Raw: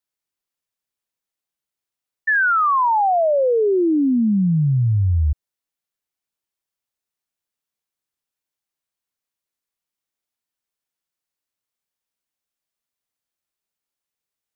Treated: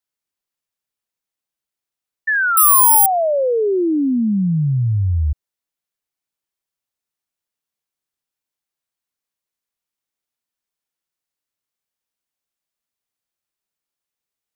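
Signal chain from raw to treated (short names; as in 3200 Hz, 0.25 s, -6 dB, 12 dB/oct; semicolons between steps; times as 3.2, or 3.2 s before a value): 2.57–3.06 careless resampling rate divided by 4×, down none, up zero stuff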